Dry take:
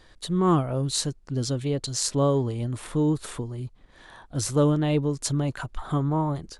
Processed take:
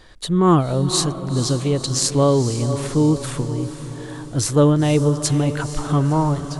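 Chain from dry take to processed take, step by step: diffused feedback echo 0.495 s, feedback 53%, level -10.5 dB; gain +6.5 dB

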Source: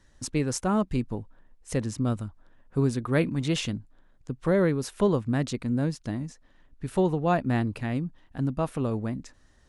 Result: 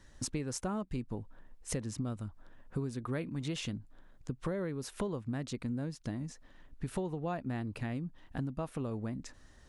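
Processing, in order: compressor 6:1, threshold -36 dBFS, peak gain reduction 17 dB; gain +2 dB

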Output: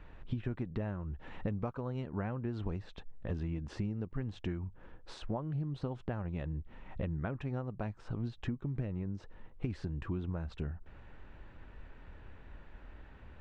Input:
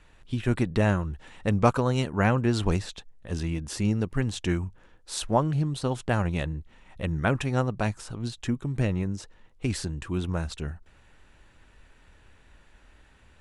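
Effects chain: compressor 10:1, threshold -38 dBFS, peak gain reduction 23 dB; tape spacing loss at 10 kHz 35 dB; gain +5.5 dB

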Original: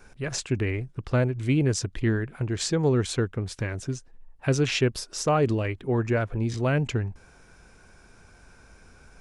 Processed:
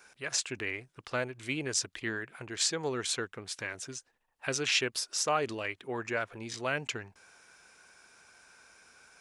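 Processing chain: HPF 1500 Hz 6 dB/oct; gain +1.5 dB

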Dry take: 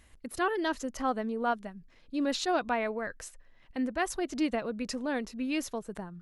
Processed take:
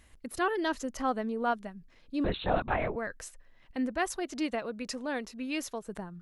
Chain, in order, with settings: 2.24–2.96 LPC vocoder at 8 kHz whisper; 4.07–5.87 low shelf 280 Hz -7 dB

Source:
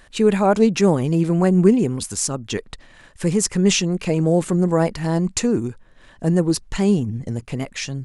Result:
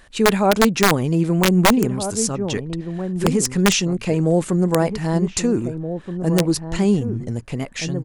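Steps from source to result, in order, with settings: outdoor echo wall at 270 m, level -9 dB; wrapped overs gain 6.5 dB

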